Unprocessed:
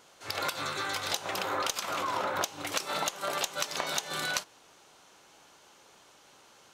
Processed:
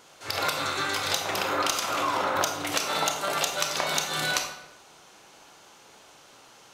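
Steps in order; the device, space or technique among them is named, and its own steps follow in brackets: bathroom (reverb RT60 0.85 s, pre-delay 25 ms, DRR 3.5 dB); gain +4 dB

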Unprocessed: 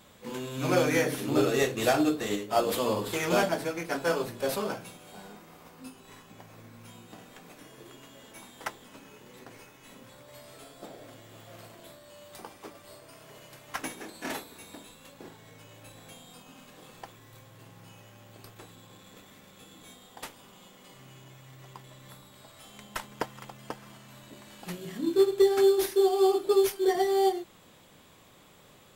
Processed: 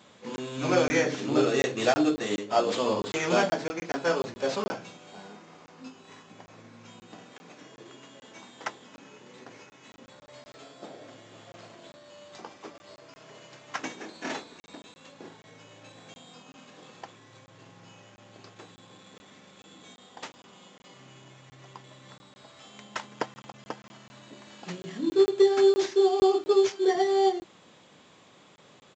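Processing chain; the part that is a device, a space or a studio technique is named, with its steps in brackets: call with lost packets (HPF 140 Hz 12 dB/oct; downsampling 16000 Hz; packet loss packets of 20 ms random); gain +1.5 dB

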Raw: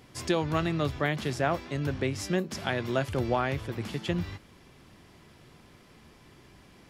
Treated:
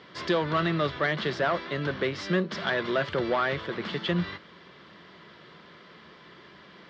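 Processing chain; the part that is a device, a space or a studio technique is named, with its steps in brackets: overdrive pedal into a guitar cabinet (overdrive pedal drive 17 dB, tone 7100 Hz, clips at -14 dBFS; speaker cabinet 86–4000 Hz, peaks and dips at 110 Hz -9 dB, 180 Hz +6 dB, 260 Hz -6 dB, 790 Hz -9 dB, 2500 Hz -9 dB)

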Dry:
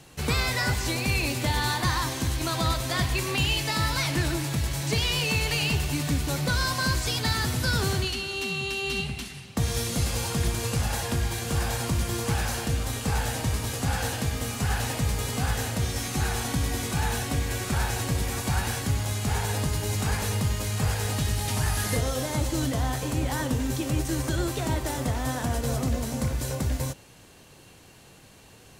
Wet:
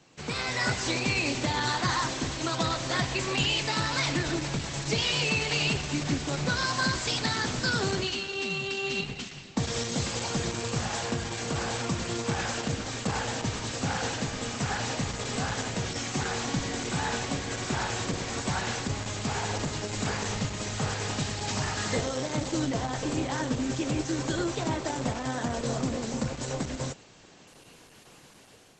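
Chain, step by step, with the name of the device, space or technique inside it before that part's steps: 7.1–7.84 HPF 88 Hz 12 dB/oct; video call (HPF 150 Hz 12 dB/oct; AGC gain up to 7 dB; gain -6 dB; Opus 12 kbps 48000 Hz)

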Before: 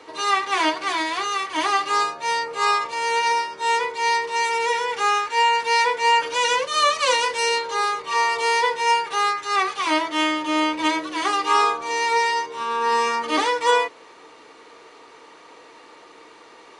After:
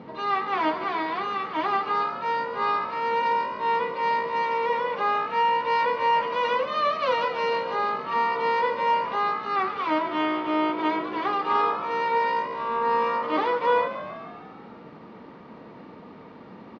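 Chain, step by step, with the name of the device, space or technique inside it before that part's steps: aircraft cabin announcement (BPF 410–3900 Hz; soft clip -13 dBFS, distortion -20 dB; brown noise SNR 14 dB); Chebyshev band-pass 210–5000 Hz, order 3; tilt -4 dB/oct; frequency-shifting echo 0.146 s, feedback 62%, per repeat +56 Hz, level -12 dB; gain -2 dB

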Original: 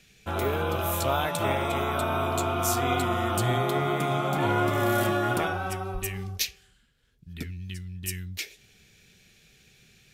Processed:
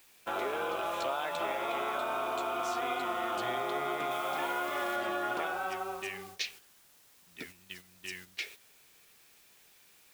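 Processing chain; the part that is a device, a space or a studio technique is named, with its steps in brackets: baby monitor (BPF 440–3700 Hz; compressor, threshold -30 dBFS, peak gain reduction 7.5 dB; white noise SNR 19 dB; gate -48 dBFS, range -7 dB); 4.11–4.96 tilt +1.5 dB/oct

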